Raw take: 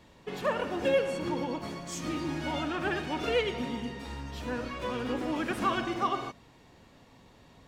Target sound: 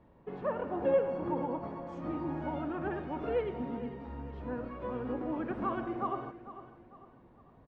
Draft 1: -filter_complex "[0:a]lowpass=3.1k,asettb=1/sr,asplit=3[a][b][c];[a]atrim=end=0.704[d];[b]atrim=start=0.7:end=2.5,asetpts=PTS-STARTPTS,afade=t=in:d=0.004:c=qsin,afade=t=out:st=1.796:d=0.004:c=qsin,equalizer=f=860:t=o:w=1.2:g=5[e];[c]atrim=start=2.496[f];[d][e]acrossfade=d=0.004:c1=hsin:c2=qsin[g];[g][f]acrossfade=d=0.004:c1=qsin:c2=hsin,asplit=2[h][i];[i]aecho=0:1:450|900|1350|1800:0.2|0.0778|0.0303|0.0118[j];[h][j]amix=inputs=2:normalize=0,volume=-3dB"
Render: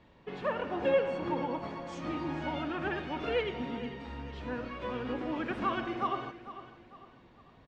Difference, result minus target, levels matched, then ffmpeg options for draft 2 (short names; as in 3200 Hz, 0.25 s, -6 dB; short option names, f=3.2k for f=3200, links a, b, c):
4000 Hz band +14.0 dB
-filter_complex "[0:a]lowpass=1.1k,asettb=1/sr,asplit=3[a][b][c];[a]atrim=end=0.704[d];[b]atrim=start=0.7:end=2.5,asetpts=PTS-STARTPTS,afade=t=in:d=0.004:c=qsin,afade=t=out:st=1.796:d=0.004:c=qsin,equalizer=f=860:t=o:w=1.2:g=5[e];[c]atrim=start=2.496[f];[d][e]acrossfade=d=0.004:c1=hsin:c2=qsin[g];[g][f]acrossfade=d=0.004:c1=qsin:c2=hsin,asplit=2[h][i];[i]aecho=0:1:450|900|1350|1800:0.2|0.0778|0.0303|0.0118[j];[h][j]amix=inputs=2:normalize=0,volume=-3dB"